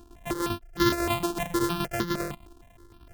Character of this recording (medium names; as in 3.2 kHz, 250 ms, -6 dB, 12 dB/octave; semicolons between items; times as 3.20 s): a buzz of ramps at a fixed pitch in blocks of 128 samples; tremolo saw down 10 Hz, depth 60%; notches that jump at a steady rate 6.5 Hz 550–2500 Hz